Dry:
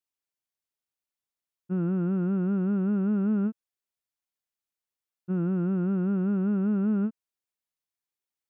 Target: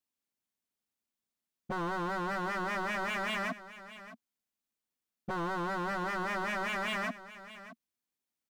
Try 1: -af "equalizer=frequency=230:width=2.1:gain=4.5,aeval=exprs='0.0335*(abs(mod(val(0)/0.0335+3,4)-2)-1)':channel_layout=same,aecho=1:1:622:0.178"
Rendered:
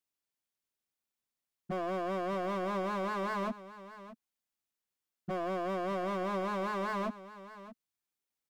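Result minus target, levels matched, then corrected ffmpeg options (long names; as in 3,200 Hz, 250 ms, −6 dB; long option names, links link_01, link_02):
250 Hz band +2.5 dB
-af "equalizer=frequency=230:width=2.1:gain=11.5,aeval=exprs='0.0335*(abs(mod(val(0)/0.0335+3,4)-2)-1)':channel_layout=same,aecho=1:1:622:0.178"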